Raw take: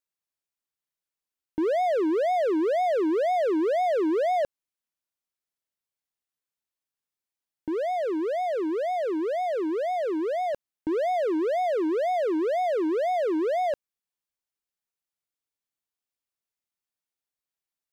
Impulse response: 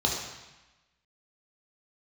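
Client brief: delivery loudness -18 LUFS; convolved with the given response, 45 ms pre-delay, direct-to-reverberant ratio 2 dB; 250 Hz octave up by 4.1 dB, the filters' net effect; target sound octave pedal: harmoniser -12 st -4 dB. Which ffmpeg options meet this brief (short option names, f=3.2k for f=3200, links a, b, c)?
-filter_complex "[0:a]equalizer=f=250:t=o:g=6.5,asplit=2[a][b];[1:a]atrim=start_sample=2205,adelay=45[c];[b][c]afir=irnorm=-1:irlink=0,volume=-12.5dB[d];[a][d]amix=inputs=2:normalize=0,asplit=2[e][f];[f]asetrate=22050,aresample=44100,atempo=2,volume=-4dB[g];[e][g]amix=inputs=2:normalize=0,volume=1dB"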